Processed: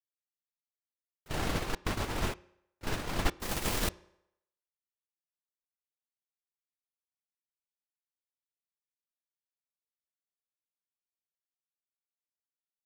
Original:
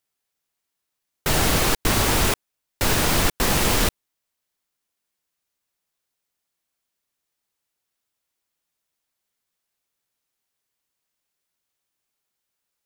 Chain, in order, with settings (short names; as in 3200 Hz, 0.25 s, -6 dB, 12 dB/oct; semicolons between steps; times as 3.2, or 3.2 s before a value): gate -17 dBFS, range -32 dB; 1.28–3.31 LPF 3100 Hz 6 dB/oct; reverb RT60 0.80 s, pre-delay 3 ms, DRR 18 dB; gain -4 dB